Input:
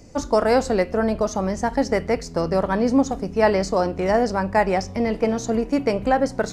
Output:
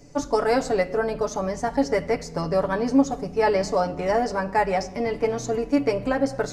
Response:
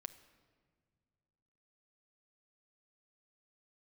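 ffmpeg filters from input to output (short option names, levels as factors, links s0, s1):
-filter_complex "[0:a]asplit=2[s0][s1];[1:a]atrim=start_sample=2205,afade=t=out:st=0.34:d=0.01,atrim=end_sample=15435,adelay=7[s2];[s1][s2]afir=irnorm=-1:irlink=0,volume=1.41[s3];[s0][s3]amix=inputs=2:normalize=0,volume=0.596"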